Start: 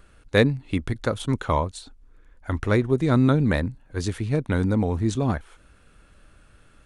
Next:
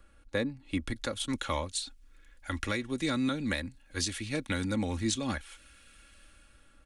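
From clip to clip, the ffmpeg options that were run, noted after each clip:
ffmpeg -i in.wav -filter_complex "[0:a]aecho=1:1:3.6:0.56,acrossover=split=180|1100|1800[link_01][link_02][link_03][link_04];[link_04]dynaudnorm=framelen=260:gausssize=7:maxgain=15dB[link_05];[link_01][link_02][link_03][link_05]amix=inputs=4:normalize=0,alimiter=limit=-10.5dB:level=0:latency=1:release=398,volume=-8.5dB" out.wav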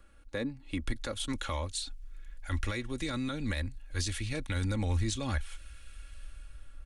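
ffmpeg -i in.wav -af "aeval=exprs='0.119*(cos(1*acos(clip(val(0)/0.119,-1,1)))-cos(1*PI/2))+0.00422*(cos(2*acos(clip(val(0)/0.119,-1,1)))-cos(2*PI/2))+0.00237*(cos(4*acos(clip(val(0)/0.119,-1,1)))-cos(4*PI/2))':channel_layout=same,alimiter=level_in=0.5dB:limit=-24dB:level=0:latency=1:release=27,volume=-0.5dB,asubboost=boost=7:cutoff=80" out.wav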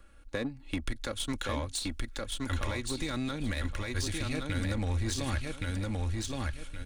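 ffmpeg -i in.wav -filter_complex "[0:a]asplit=2[link_01][link_02];[link_02]acrusher=bits=4:mix=0:aa=0.5,volume=-8.5dB[link_03];[link_01][link_03]amix=inputs=2:normalize=0,aecho=1:1:1120|2240|3360:0.668|0.16|0.0385,acompressor=threshold=-34dB:ratio=2,volume=2dB" out.wav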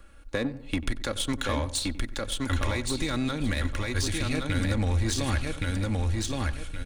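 ffmpeg -i in.wav -filter_complex "[0:a]asplit=2[link_01][link_02];[link_02]adelay=93,lowpass=frequency=1300:poles=1,volume=-14dB,asplit=2[link_03][link_04];[link_04]adelay=93,lowpass=frequency=1300:poles=1,volume=0.47,asplit=2[link_05][link_06];[link_06]adelay=93,lowpass=frequency=1300:poles=1,volume=0.47,asplit=2[link_07][link_08];[link_08]adelay=93,lowpass=frequency=1300:poles=1,volume=0.47[link_09];[link_01][link_03][link_05][link_07][link_09]amix=inputs=5:normalize=0,volume=5dB" out.wav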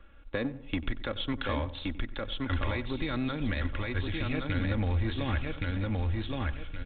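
ffmpeg -i in.wav -af "volume=-3dB" -ar 8000 -c:a pcm_mulaw out.wav

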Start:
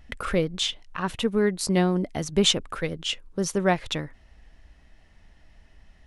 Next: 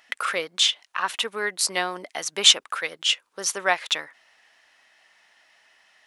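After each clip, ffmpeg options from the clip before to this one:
ffmpeg -i in.wav -af "highpass=980,volume=7dB" out.wav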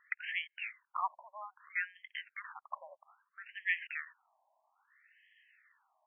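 ffmpeg -i in.wav -af "afftfilt=real='re*between(b*sr/1024,760*pow(2400/760,0.5+0.5*sin(2*PI*0.61*pts/sr))/1.41,760*pow(2400/760,0.5+0.5*sin(2*PI*0.61*pts/sr))*1.41)':imag='im*between(b*sr/1024,760*pow(2400/760,0.5+0.5*sin(2*PI*0.61*pts/sr))/1.41,760*pow(2400/760,0.5+0.5*sin(2*PI*0.61*pts/sr))*1.41)':win_size=1024:overlap=0.75,volume=-6dB" out.wav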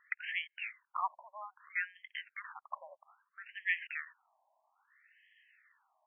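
ffmpeg -i in.wav -af anull out.wav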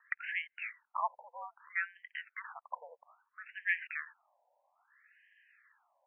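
ffmpeg -i in.wav -af "highpass=frequency=510:width_type=q:width=0.5412,highpass=frequency=510:width_type=q:width=1.307,lowpass=frequency=2800:width_type=q:width=0.5176,lowpass=frequency=2800:width_type=q:width=0.7071,lowpass=frequency=2800:width_type=q:width=1.932,afreqshift=-77,volume=1dB" out.wav

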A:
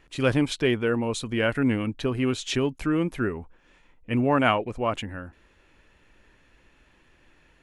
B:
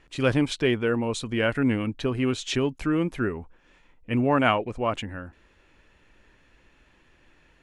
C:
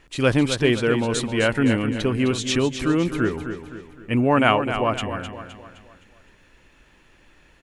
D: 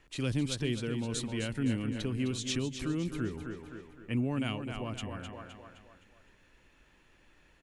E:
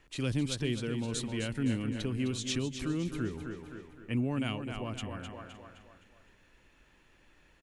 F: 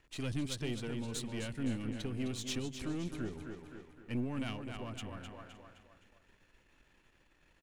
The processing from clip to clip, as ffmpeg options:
ffmpeg -i in.wav -af "lowpass=9700" out.wav
ffmpeg -i in.wav -af "highshelf=frequency=7100:gain=7.5,aecho=1:1:258|516|774|1032|1290:0.355|0.156|0.0687|0.0302|0.0133,volume=3.5dB" out.wav
ffmpeg -i in.wav -filter_complex "[0:a]acrossover=split=290|3000[link_01][link_02][link_03];[link_02]acompressor=threshold=-33dB:ratio=6[link_04];[link_01][link_04][link_03]amix=inputs=3:normalize=0,volume=-8.5dB" out.wav
ffmpeg -i in.wav -af "aecho=1:1:562:0.0668" out.wav
ffmpeg -i in.wav -af "aeval=exprs='if(lt(val(0),0),0.447*val(0),val(0))':channel_layout=same,volume=-2dB" out.wav

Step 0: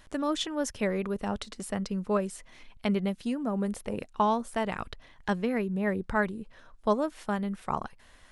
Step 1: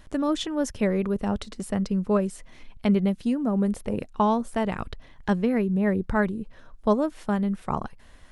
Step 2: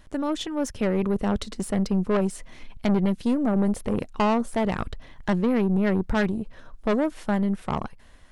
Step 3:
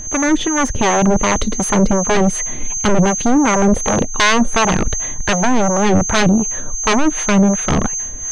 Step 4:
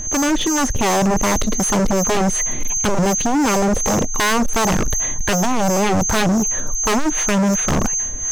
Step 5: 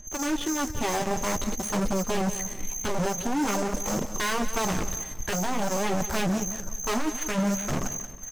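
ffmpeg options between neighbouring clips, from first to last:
ffmpeg -i in.wav -af "lowshelf=frequency=490:gain=8" out.wav
ffmpeg -i in.wav -af "dynaudnorm=framelen=350:gausssize=5:maxgain=6dB,aeval=exprs='(tanh(7.94*val(0)+0.45)-tanh(0.45))/7.94':channel_layout=same" out.wav
ffmpeg -i in.wav -filter_complex "[0:a]aeval=exprs='val(0)+0.0398*sin(2*PI*6300*n/s)':channel_layout=same,acrossover=split=3500[link_01][link_02];[link_01]aeval=exprs='0.2*sin(PI/2*2.82*val(0)/0.2)':channel_layout=same[link_03];[link_03][link_02]amix=inputs=2:normalize=0,acrossover=split=570[link_04][link_05];[link_04]aeval=exprs='val(0)*(1-0.7/2+0.7/2*cos(2*PI*2.7*n/s))':channel_layout=same[link_06];[link_05]aeval=exprs='val(0)*(1-0.7/2-0.7/2*cos(2*PI*2.7*n/s))':channel_layout=same[link_07];[link_06][link_07]amix=inputs=2:normalize=0,volume=7.5dB" out.wav
ffmpeg -i in.wav -af "asoftclip=type=hard:threshold=-16dB,volume=1.5dB" out.wav
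ffmpeg -i in.wav -af "flanger=delay=5:depth=8:regen=-47:speed=0.49:shape=sinusoidal,aeval=exprs='0.2*(cos(1*acos(clip(val(0)/0.2,-1,1)))-cos(1*PI/2))+0.0501*(cos(3*acos(clip(val(0)/0.2,-1,1)))-cos(3*PI/2))':channel_layout=same,aecho=1:1:182|364|546|728:0.251|0.0955|0.0363|0.0138,volume=-3.5dB" out.wav

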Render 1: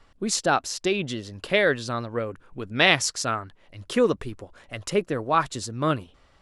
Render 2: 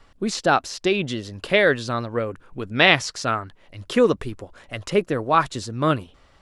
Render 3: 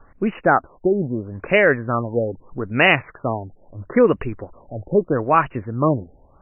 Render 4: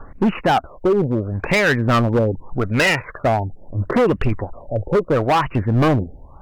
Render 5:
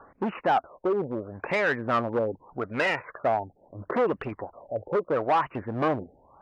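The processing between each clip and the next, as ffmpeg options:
ffmpeg -i in.wav -filter_complex "[0:a]acrossover=split=4700[link_01][link_02];[link_02]acompressor=threshold=-40dB:ratio=4:attack=1:release=60[link_03];[link_01][link_03]amix=inputs=2:normalize=0,volume=3.5dB" out.wav
ffmpeg -i in.wav -filter_complex "[0:a]asplit=2[link_01][link_02];[link_02]alimiter=limit=-11.5dB:level=0:latency=1:release=110,volume=-2dB[link_03];[link_01][link_03]amix=inputs=2:normalize=0,acrusher=bits=11:mix=0:aa=0.000001,afftfilt=real='re*lt(b*sr/1024,850*pow(3000/850,0.5+0.5*sin(2*PI*0.78*pts/sr)))':imag='im*lt(b*sr/1024,850*pow(3000/850,0.5+0.5*sin(2*PI*0.78*pts/sr)))':win_size=1024:overlap=0.75,volume=-1dB" out.wav
ffmpeg -i in.wav -af "acompressor=threshold=-17dB:ratio=5,aphaser=in_gain=1:out_gain=1:delay=2.2:decay=0.45:speed=0.51:type=triangular,asoftclip=type=hard:threshold=-19.5dB,volume=7.5dB" out.wav
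ffmpeg -i in.wav -af "bandpass=frequency=860:width_type=q:width=0.63:csg=0,volume=-5.5dB" out.wav

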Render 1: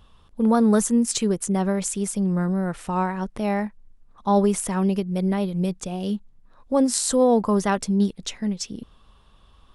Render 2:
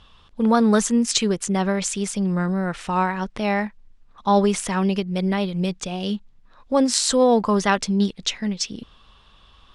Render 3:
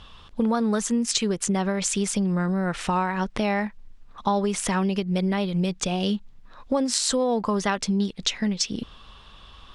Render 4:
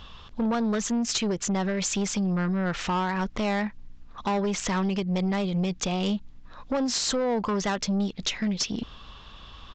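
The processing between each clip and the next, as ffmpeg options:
ffmpeg -i in.wav -af "lowpass=7400,equalizer=frequency=3200:width=0.4:gain=9" out.wav
ffmpeg -i in.wav -af "acompressor=threshold=-26dB:ratio=6,volume=5dB" out.wav
ffmpeg -i in.wav -af "aeval=exprs='val(0)+0.00126*(sin(2*PI*60*n/s)+sin(2*PI*2*60*n/s)/2+sin(2*PI*3*60*n/s)/3+sin(2*PI*4*60*n/s)/4+sin(2*PI*5*60*n/s)/5)':channel_layout=same,aresample=16000,asoftclip=type=tanh:threshold=-23dB,aresample=44100,volume=1.5dB" out.wav

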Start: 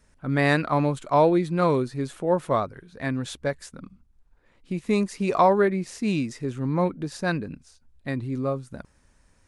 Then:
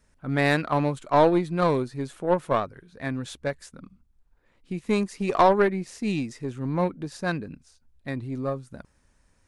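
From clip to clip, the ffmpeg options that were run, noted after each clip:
ffmpeg -i in.wav -af "aeval=exprs='0.447*(cos(1*acos(clip(val(0)/0.447,-1,1)))-cos(1*PI/2))+0.0708*(cos(2*acos(clip(val(0)/0.447,-1,1)))-cos(2*PI/2))+0.02*(cos(7*acos(clip(val(0)/0.447,-1,1)))-cos(7*PI/2))':channel_layout=same" out.wav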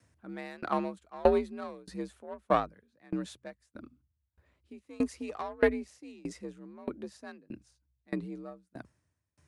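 ffmpeg -i in.wav -af "afreqshift=58,aeval=exprs='val(0)*pow(10,-29*if(lt(mod(1.6*n/s,1),2*abs(1.6)/1000),1-mod(1.6*n/s,1)/(2*abs(1.6)/1000),(mod(1.6*n/s,1)-2*abs(1.6)/1000)/(1-2*abs(1.6)/1000))/20)':channel_layout=same" out.wav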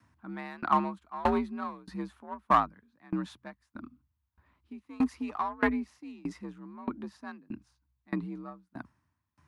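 ffmpeg -i in.wav -filter_complex "[0:a]equalizer=frequency=250:width_type=o:width=1:gain=7,equalizer=frequency=500:width_type=o:width=1:gain=-12,equalizer=frequency=1000:width_type=o:width=1:gain=12,equalizer=frequency=8000:width_type=o:width=1:gain=-9,acrossover=split=1000[link_01][link_02];[link_01]asoftclip=type=hard:threshold=-20.5dB[link_03];[link_03][link_02]amix=inputs=2:normalize=0" out.wav

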